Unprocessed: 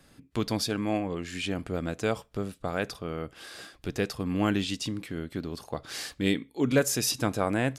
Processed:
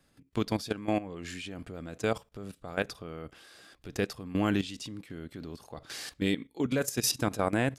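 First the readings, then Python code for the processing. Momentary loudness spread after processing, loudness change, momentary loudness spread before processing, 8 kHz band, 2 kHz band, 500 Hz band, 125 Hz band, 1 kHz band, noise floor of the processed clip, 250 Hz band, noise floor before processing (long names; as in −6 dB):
16 LU, −2.5 dB, 11 LU, −3.0 dB, −2.5 dB, −3.0 dB, −3.5 dB, −2.0 dB, −68 dBFS, −3.0 dB, −60 dBFS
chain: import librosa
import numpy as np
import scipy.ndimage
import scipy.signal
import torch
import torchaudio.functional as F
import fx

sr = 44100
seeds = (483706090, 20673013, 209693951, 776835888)

y = fx.level_steps(x, sr, step_db=14)
y = F.gain(torch.from_numpy(y), 1.5).numpy()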